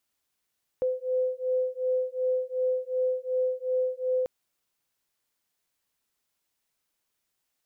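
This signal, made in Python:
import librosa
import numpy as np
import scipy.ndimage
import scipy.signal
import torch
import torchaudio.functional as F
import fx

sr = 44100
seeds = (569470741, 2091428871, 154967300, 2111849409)

y = fx.two_tone_beats(sr, length_s=3.44, hz=509.0, beat_hz=2.7, level_db=-28.0)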